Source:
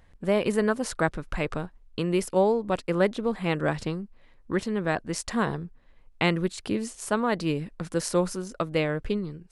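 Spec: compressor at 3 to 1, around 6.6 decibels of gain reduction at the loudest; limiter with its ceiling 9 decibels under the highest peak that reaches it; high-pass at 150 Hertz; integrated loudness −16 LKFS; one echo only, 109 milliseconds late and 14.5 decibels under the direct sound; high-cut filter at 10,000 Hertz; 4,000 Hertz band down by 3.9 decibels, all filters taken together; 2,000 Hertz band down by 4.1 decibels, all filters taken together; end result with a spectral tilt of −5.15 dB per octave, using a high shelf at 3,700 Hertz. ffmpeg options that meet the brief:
ffmpeg -i in.wav -af "highpass=150,lowpass=10000,equalizer=frequency=2000:width_type=o:gain=-5,highshelf=frequency=3700:gain=4.5,equalizer=frequency=4000:width_type=o:gain=-6.5,acompressor=threshold=-27dB:ratio=3,alimiter=limit=-24dB:level=0:latency=1,aecho=1:1:109:0.188,volume=19dB" out.wav

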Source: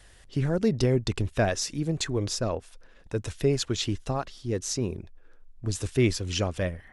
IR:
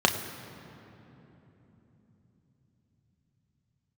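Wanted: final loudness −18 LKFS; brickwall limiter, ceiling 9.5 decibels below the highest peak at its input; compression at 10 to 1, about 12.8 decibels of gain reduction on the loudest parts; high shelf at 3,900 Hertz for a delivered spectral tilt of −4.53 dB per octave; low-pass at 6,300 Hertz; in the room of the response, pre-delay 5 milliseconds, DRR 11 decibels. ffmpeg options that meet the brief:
-filter_complex "[0:a]lowpass=6300,highshelf=frequency=3900:gain=8,acompressor=threshold=-31dB:ratio=10,alimiter=level_in=4dB:limit=-24dB:level=0:latency=1,volume=-4dB,asplit=2[link_01][link_02];[1:a]atrim=start_sample=2205,adelay=5[link_03];[link_02][link_03]afir=irnorm=-1:irlink=0,volume=-26.5dB[link_04];[link_01][link_04]amix=inputs=2:normalize=0,volume=20.5dB"

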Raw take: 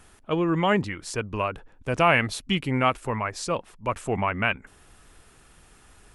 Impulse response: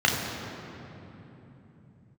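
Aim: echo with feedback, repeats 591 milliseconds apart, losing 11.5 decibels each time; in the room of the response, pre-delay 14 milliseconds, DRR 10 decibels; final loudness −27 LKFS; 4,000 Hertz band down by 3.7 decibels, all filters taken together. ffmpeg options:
-filter_complex "[0:a]equalizer=frequency=4000:width_type=o:gain=-6,aecho=1:1:591|1182|1773:0.266|0.0718|0.0194,asplit=2[link_01][link_02];[1:a]atrim=start_sample=2205,adelay=14[link_03];[link_02][link_03]afir=irnorm=-1:irlink=0,volume=-27dB[link_04];[link_01][link_04]amix=inputs=2:normalize=0,volume=-1.5dB"

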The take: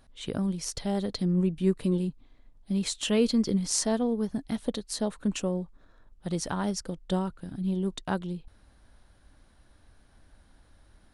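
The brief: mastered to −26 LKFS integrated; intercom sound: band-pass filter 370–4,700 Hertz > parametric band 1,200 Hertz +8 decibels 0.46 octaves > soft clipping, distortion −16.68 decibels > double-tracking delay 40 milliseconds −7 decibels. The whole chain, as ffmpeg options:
ffmpeg -i in.wav -filter_complex "[0:a]highpass=370,lowpass=4700,equalizer=frequency=1200:width_type=o:width=0.46:gain=8,asoftclip=threshold=-21.5dB,asplit=2[link_01][link_02];[link_02]adelay=40,volume=-7dB[link_03];[link_01][link_03]amix=inputs=2:normalize=0,volume=9.5dB" out.wav

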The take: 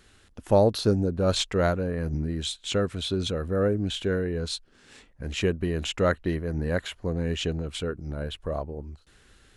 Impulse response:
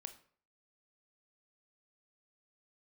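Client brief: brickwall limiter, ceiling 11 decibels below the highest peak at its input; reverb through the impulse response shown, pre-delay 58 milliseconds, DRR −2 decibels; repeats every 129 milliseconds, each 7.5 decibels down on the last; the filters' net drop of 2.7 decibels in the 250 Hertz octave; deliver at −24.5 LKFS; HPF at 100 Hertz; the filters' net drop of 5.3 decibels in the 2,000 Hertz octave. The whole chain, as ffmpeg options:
-filter_complex "[0:a]highpass=100,equalizer=frequency=250:width_type=o:gain=-3.5,equalizer=frequency=2000:width_type=o:gain=-7.5,alimiter=limit=-20dB:level=0:latency=1,aecho=1:1:129|258|387|516|645:0.422|0.177|0.0744|0.0312|0.0131,asplit=2[link_01][link_02];[1:a]atrim=start_sample=2205,adelay=58[link_03];[link_02][link_03]afir=irnorm=-1:irlink=0,volume=7dB[link_04];[link_01][link_04]amix=inputs=2:normalize=0,volume=2.5dB"

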